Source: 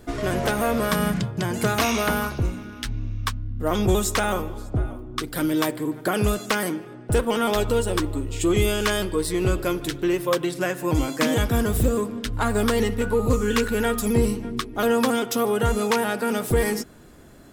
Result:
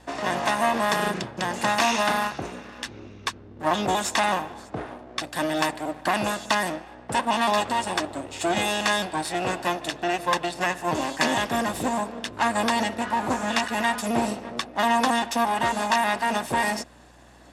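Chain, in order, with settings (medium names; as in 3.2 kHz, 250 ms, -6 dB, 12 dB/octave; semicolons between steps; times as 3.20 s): comb filter that takes the minimum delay 1.1 ms; band-pass 290–7800 Hz; hum 60 Hz, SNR 30 dB; trim +2 dB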